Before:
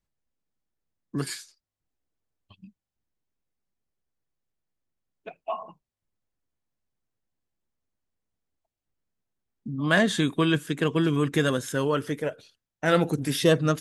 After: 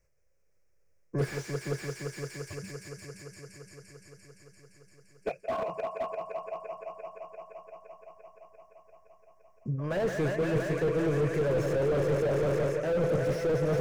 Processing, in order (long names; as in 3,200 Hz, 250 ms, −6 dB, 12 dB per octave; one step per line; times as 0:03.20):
in parallel at −3 dB: hard clipping −25.5 dBFS, distortion −6 dB
on the sum: parametric band 240 Hz −14 dB 0.57 octaves
echo machine with several playback heads 172 ms, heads all three, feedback 72%, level −14 dB
reversed playback
downward compressor 16 to 1, threshold −30 dBFS, peak gain reduction 16 dB
reversed playback
drawn EQ curve 130 Hz 0 dB, 280 Hz −5 dB, 540 Hz +10 dB, 790 Hz −8 dB, 1,400 Hz −3 dB, 2,400 Hz +1 dB, 3,600 Hz −26 dB, 5,500 Hz +2 dB, 8,700 Hz −7 dB
slew-rate limiting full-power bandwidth 13 Hz
level +6.5 dB